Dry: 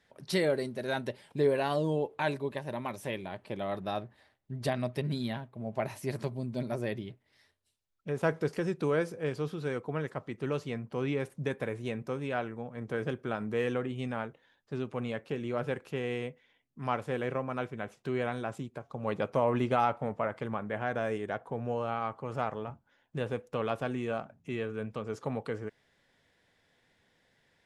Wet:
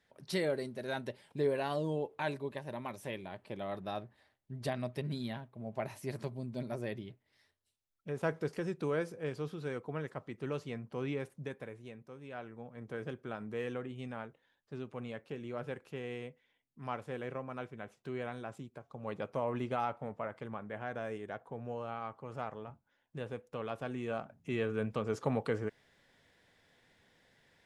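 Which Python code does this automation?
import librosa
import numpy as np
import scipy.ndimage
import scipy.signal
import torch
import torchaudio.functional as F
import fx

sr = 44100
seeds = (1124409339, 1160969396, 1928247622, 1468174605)

y = fx.gain(x, sr, db=fx.line((11.14, -5.0), (12.1, -16.0), (12.62, -7.5), (23.7, -7.5), (24.73, 2.0)))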